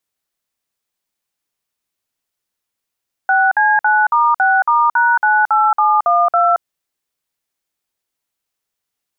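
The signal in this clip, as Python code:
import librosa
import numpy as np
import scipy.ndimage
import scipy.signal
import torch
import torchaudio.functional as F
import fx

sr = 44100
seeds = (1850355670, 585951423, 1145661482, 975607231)

y = fx.dtmf(sr, digits='6C9*6*#98712', tone_ms=224, gap_ms=53, level_db=-12.5)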